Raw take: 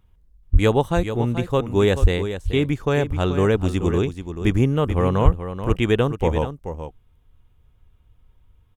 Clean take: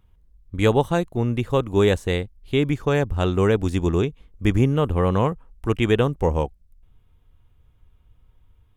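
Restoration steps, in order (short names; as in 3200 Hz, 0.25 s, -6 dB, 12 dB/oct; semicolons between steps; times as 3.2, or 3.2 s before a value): de-plosive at 0.52/2.01/5.24; inverse comb 0.432 s -10 dB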